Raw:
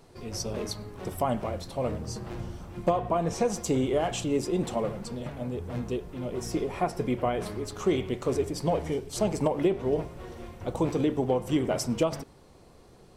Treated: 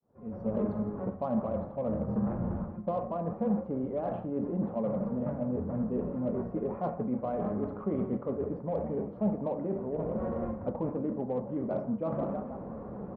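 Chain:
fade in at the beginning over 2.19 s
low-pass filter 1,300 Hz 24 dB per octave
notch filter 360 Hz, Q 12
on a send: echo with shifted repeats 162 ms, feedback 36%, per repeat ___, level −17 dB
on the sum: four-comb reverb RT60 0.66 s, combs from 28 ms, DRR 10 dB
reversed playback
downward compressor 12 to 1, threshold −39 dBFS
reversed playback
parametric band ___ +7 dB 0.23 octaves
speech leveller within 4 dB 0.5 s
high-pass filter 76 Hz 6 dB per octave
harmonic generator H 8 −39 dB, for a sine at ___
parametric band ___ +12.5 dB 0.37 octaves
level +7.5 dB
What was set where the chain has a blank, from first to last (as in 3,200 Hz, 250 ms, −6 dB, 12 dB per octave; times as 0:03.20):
+54 Hz, 560 Hz, −29 dBFS, 210 Hz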